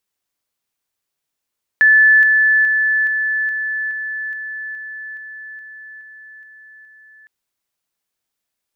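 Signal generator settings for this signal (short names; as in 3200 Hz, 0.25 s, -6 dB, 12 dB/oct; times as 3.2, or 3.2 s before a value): level ladder 1740 Hz -7 dBFS, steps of -3 dB, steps 13, 0.42 s 0.00 s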